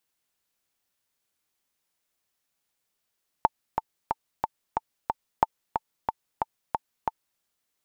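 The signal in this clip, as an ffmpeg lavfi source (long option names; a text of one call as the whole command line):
ffmpeg -f lavfi -i "aevalsrc='pow(10,(-5-6.5*gte(mod(t,6*60/182),60/182))/20)*sin(2*PI*889*mod(t,60/182))*exp(-6.91*mod(t,60/182)/0.03)':duration=3.95:sample_rate=44100" out.wav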